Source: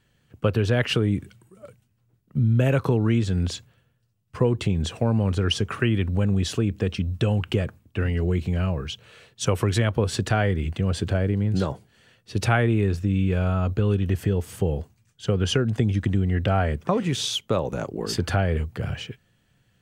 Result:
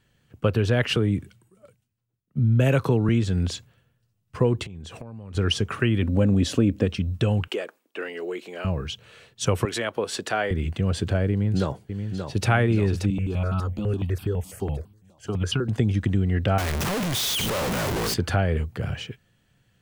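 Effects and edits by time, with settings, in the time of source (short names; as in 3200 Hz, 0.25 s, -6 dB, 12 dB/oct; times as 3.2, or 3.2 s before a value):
0.96–3.09 three-band expander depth 40%
4.63–5.35 compressor 16:1, threshold -34 dBFS
6.02–6.86 small resonant body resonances 270/540 Hz, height 11 dB
7.48–8.65 HPF 350 Hz 24 dB/oct
9.65–10.51 HPF 360 Hz
11.31–12.47 echo throw 0.58 s, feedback 60%, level -7 dB
13.1–15.69 step phaser 12 Hz 430–1900 Hz
16.58–18.14 infinite clipping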